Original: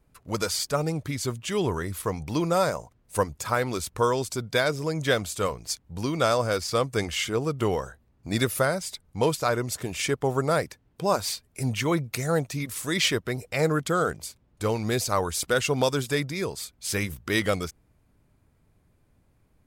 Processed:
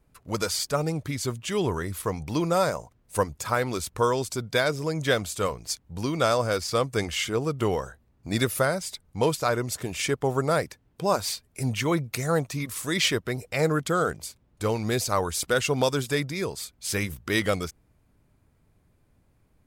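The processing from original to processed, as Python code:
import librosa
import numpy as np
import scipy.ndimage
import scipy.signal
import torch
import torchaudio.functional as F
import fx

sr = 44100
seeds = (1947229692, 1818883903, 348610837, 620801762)

y = fx.peak_eq(x, sr, hz=1100.0, db=6.0, octaves=0.36, at=(12.23, 12.82))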